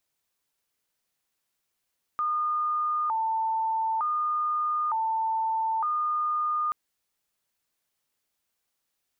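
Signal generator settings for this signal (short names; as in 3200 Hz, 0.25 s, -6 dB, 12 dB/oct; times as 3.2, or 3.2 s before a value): siren hi-lo 891–1220 Hz 0.55/s sine -24 dBFS 4.53 s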